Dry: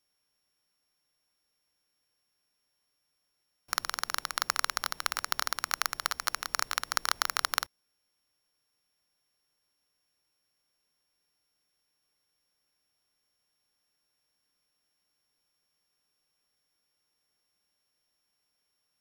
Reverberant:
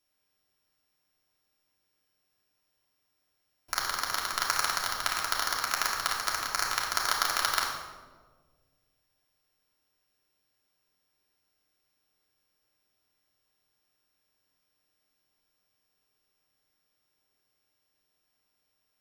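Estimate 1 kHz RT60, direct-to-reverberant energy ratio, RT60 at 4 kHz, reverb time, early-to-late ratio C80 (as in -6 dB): 1.3 s, -3.5 dB, 0.80 s, 1.5 s, 5.5 dB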